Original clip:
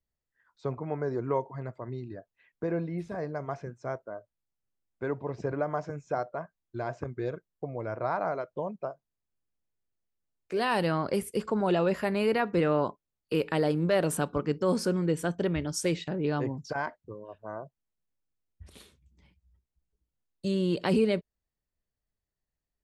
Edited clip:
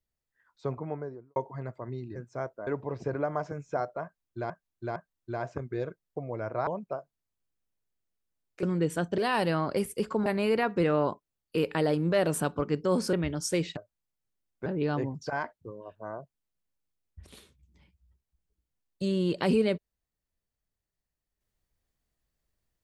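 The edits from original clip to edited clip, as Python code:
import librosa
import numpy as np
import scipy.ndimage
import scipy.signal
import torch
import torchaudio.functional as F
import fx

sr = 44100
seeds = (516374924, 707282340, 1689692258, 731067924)

y = fx.studio_fade_out(x, sr, start_s=0.73, length_s=0.63)
y = fx.edit(y, sr, fx.cut(start_s=2.16, length_s=1.49),
    fx.move(start_s=4.16, length_s=0.89, to_s=16.09),
    fx.repeat(start_s=6.42, length_s=0.46, count=3),
    fx.cut(start_s=8.13, length_s=0.46),
    fx.cut(start_s=11.63, length_s=0.4),
    fx.move(start_s=14.9, length_s=0.55, to_s=10.55), tone=tone)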